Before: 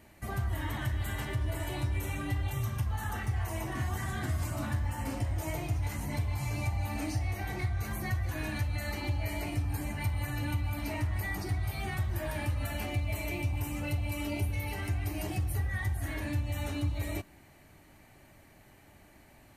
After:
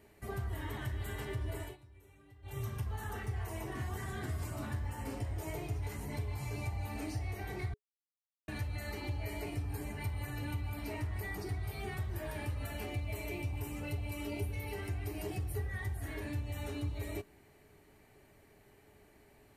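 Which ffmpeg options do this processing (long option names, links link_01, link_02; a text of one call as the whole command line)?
ffmpeg -i in.wav -filter_complex "[0:a]asplit=5[link_01][link_02][link_03][link_04][link_05];[link_01]atrim=end=1.77,asetpts=PTS-STARTPTS,afade=type=out:start_time=1.54:duration=0.23:curve=qsin:silence=0.0891251[link_06];[link_02]atrim=start=1.77:end=2.42,asetpts=PTS-STARTPTS,volume=-21dB[link_07];[link_03]atrim=start=2.42:end=7.74,asetpts=PTS-STARTPTS,afade=type=in:duration=0.23:curve=qsin:silence=0.0891251,afade=type=out:start_time=5.316:duration=0.004:curve=hsin[link_08];[link_04]atrim=start=7.74:end=8.48,asetpts=PTS-STARTPTS,volume=0[link_09];[link_05]atrim=start=8.48,asetpts=PTS-STARTPTS,afade=type=in:duration=0.004:curve=hsin[link_10];[link_06][link_07][link_08][link_09][link_10]concat=n=5:v=0:a=1,equalizer=frequency=420:width_type=o:width=0.21:gain=15,bandreject=frequency=6300:width=19,volume=-6dB" out.wav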